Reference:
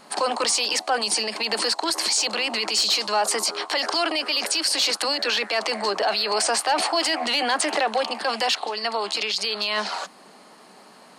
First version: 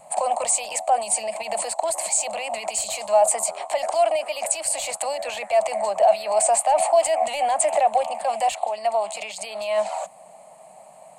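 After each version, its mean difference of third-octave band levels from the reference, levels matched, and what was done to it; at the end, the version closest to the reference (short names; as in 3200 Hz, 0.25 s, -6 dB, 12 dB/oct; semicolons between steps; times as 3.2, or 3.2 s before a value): 8.0 dB: EQ curve 150 Hz 0 dB, 260 Hz -19 dB, 400 Hz -20 dB, 640 Hz +9 dB, 1500 Hz -19 dB, 2300 Hz -6 dB, 3300 Hz -15 dB, 5400 Hz -20 dB, 7700 Hz +5 dB, 11000 Hz -4 dB; gain +2.5 dB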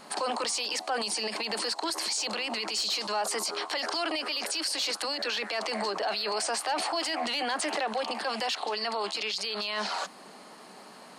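2.0 dB: limiter -22.5 dBFS, peak gain reduction 9.5 dB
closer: second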